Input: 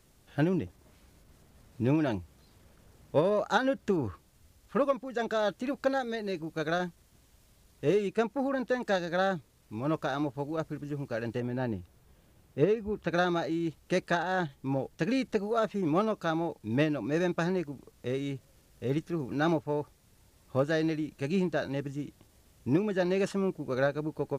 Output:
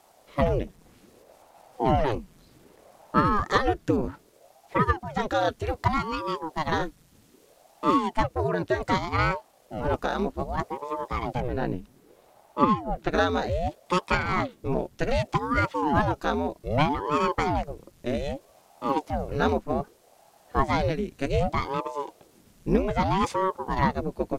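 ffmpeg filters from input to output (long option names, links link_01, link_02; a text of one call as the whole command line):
ffmpeg -i in.wav -af "aeval=exprs='val(0)*sin(2*PI*420*n/s+420*0.8/0.64*sin(2*PI*0.64*n/s))':channel_layout=same,volume=7dB" out.wav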